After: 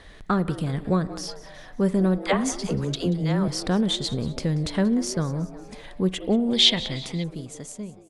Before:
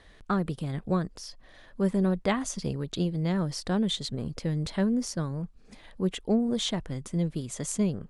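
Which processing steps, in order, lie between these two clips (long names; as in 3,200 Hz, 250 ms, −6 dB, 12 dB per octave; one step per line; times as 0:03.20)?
fade-out on the ending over 1.97 s
0:02.18–0:03.48: all-pass dispersion lows, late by 83 ms, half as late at 450 Hz
on a send: echo with shifted repeats 183 ms, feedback 45%, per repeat +140 Hz, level −18 dB
on the sum: spring reverb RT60 1 s, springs 38/48 ms, chirp 50 ms, DRR 17 dB
in parallel at −0.5 dB: downward compressor, threshold −34 dBFS, peak gain reduction 12.5 dB
0:06.53–0:07.24: on the sum: flat-topped bell 3,100 Hz +12.5 dB
level +2 dB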